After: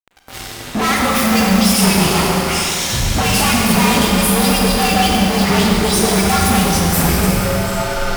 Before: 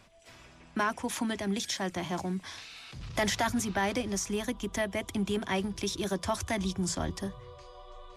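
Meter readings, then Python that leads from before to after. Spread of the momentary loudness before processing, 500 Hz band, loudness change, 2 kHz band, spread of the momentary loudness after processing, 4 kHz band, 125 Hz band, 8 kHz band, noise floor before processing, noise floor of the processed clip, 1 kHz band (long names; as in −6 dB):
14 LU, +15.5 dB, +18.5 dB, +17.5 dB, 6 LU, +20.0 dB, +20.5 dB, +19.5 dB, −55 dBFS, −31 dBFS, +18.5 dB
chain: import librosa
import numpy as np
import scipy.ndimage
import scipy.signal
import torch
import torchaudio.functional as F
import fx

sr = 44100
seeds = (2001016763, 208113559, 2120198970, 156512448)

y = fx.partial_stretch(x, sr, pct=116)
y = fx.dispersion(y, sr, late='highs', ms=75.0, hz=1600.0)
y = fx.fuzz(y, sr, gain_db=50.0, gate_db=-55.0)
y = fx.rev_schroeder(y, sr, rt60_s=3.0, comb_ms=32, drr_db=-1.5)
y = F.gain(torch.from_numpy(y), -3.0).numpy()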